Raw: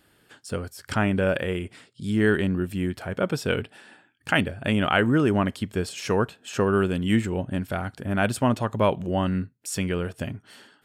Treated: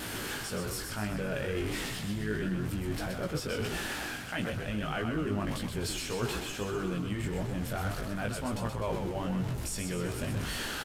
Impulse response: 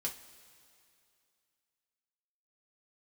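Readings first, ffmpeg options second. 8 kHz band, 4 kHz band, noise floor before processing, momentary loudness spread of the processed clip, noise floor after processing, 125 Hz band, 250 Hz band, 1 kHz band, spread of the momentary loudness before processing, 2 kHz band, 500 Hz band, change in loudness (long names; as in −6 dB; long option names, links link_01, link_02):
−0.5 dB, −3.5 dB, −63 dBFS, 2 LU, −39 dBFS, −7.0 dB, −9.5 dB, −9.5 dB, 12 LU, −8.0 dB, −10.0 dB, −8.5 dB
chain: -filter_complex "[0:a]aeval=exprs='val(0)+0.5*0.0335*sgn(val(0))':channel_layout=same,areverse,acompressor=threshold=-29dB:ratio=6,areverse,flanger=delay=16.5:depth=3.6:speed=1.6,asplit=8[link_01][link_02][link_03][link_04][link_05][link_06][link_07][link_08];[link_02]adelay=126,afreqshift=-57,volume=-5.5dB[link_09];[link_03]adelay=252,afreqshift=-114,volume=-10.9dB[link_10];[link_04]adelay=378,afreqshift=-171,volume=-16.2dB[link_11];[link_05]adelay=504,afreqshift=-228,volume=-21.6dB[link_12];[link_06]adelay=630,afreqshift=-285,volume=-26.9dB[link_13];[link_07]adelay=756,afreqshift=-342,volume=-32.3dB[link_14];[link_08]adelay=882,afreqshift=-399,volume=-37.6dB[link_15];[link_01][link_09][link_10][link_11][link_12][link_13][link_14][link_15]amix=inputs=8:normalize=0,aresample=32000,aresample=44100"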